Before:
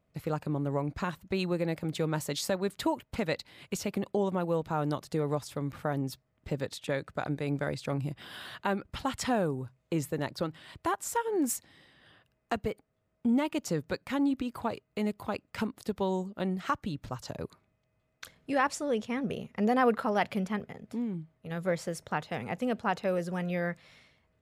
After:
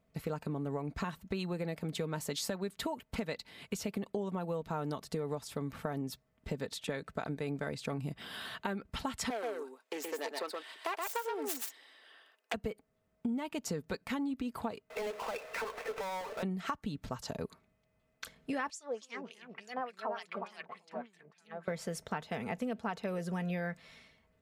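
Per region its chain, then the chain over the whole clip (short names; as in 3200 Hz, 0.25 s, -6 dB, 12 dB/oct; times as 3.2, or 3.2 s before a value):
9.3–12.54 self-modulated delay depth 0.21 ms + Bessel high-pass 530 Hz, order 8 + echo 0.124 s -4 dB
14.9–16.43 brick-wall FIR band-pass 420–2700 Hz + compressor 3:1, threshold -43 dBFS + power-law curve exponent 0.35
18.7–21.68 echoes that change speed 0.198 s, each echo -2 st, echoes 2, each echo -6 dB + LFO band-pass sine 3.4 Hz 640–7900 Hz
whole clip: comb 4.5 ms, depth 39%; compressor, threshold -33 dBFS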